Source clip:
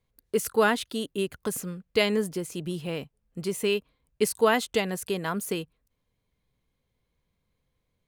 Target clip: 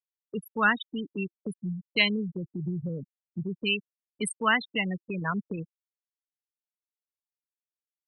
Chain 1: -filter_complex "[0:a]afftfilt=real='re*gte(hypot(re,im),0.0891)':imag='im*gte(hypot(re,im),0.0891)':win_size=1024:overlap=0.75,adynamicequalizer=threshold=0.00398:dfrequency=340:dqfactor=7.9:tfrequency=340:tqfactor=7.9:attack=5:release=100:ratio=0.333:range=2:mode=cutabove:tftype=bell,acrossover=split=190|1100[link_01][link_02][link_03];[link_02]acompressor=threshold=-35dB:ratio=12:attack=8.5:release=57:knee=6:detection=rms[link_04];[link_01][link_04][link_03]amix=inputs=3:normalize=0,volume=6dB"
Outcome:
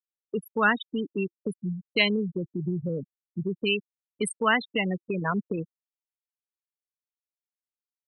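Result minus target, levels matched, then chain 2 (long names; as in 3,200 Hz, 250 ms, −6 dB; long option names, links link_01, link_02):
downward compressor: peak gain reduction −9 dB
-filter_complex "[0:a]afftfilt=real='re*gte(hypot(re,im),0.0891)':imag='im*gte(hypot(re,im),0.0891)':win_size=1024:overlap=0.75,adynamicequalizer=threshold=0.00398:dfrequency=340:dqfactor=7.9:tfrequency=340:tqfactor=7.9:attack=5:release=100:ratio=0.333:range=2:mode=cutabove:tftype=bell,acrossover=split=190|1100[link_01][link_02][link_03];[link_02]acompressor=threshold=-45dB:ratio=12:attack=8.5:release=57:knee=6:detection=rms[link_04];[link_01][link_04][link_03]amix=inputs=3:normalize=0,volume=6dB"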